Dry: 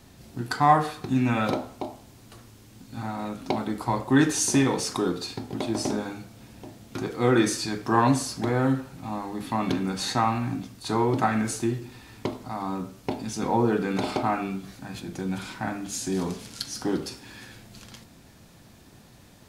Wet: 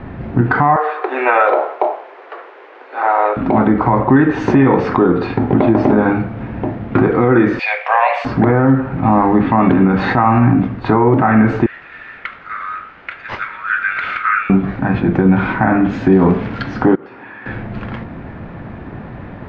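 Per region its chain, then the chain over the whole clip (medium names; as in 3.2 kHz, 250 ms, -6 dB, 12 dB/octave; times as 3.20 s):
0.76–3.37 s: CVSD coder 64 kbps + steep high-pass 400 Hz 48 dB/octave
7.59–8.25 s: rippled Chebyshev high-pass 500 Hz, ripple 6 dB + resonant high shelf 1.9 kHz +6.5 dB, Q 3
11.66–14.50 s: steep high-pass 1.3 kHz 72 dB/octave + careless resampling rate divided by 4×, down none, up hold
16.95–17.46 s: high-pass 1 kHz 6 dB/octave + peaking EQ 5.9 kHz -11 dB 1.7 oct + compression 4:1, threshold -51 dBFS
whole clip: low-pass 2 kHz 24 dB/octave; compression 6:1, threshold -28 dBFS; loudness maximiser +23.5 dB; trim -1 dB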